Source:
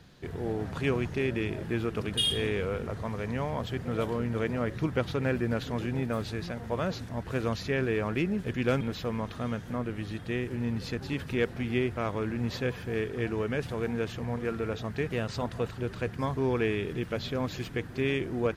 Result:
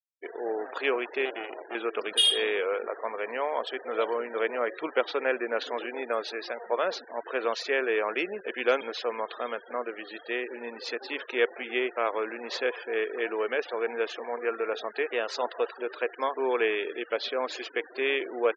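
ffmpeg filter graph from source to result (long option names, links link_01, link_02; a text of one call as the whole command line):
ffmpeg -i in.wav -filter_complex "[0:a]asettb=1/sr,asplit=3[link_01][link_02][link_03];[link_01]atrim=end=1.254[link_04];[link_02]atrim=start=1.25:end=1.75,asetpts=PTS-STARTPTS,afade=type=in:duration=0.004:curve=qsin,afade=type=out:start_time=0.496:duration=0.004:curve=qsin,acrossover=split=3100[link_05][link_06];[link_06]acompressor=threshold=-51dB:ratio=4:attack=1:release=60[link_07];[link_05][link_07]amix=inputs=2:normalize=0,aeval=exprs='max(val(0),0)':channel_layout=same[link_08];[link_03]atrim=start=1.746[link_09];[link_04][link_08]acrossfade=duration=0.004:curve1=hsin:curve2=qsin[link_10];[link_10][link_09]acrossfade=duration=0.004:curve1=qsin:curve2=hsin,highpass=frequency=420:width=0.5412,highpass=frequency=420:width=1.3066,afftfilt=real='re*gte(hypot(re,im),0.00631)':imag='im*gte(hypot(re,im),0.00631)':win_size=1024:overlap=0.75,volume=5.5dB" out.wav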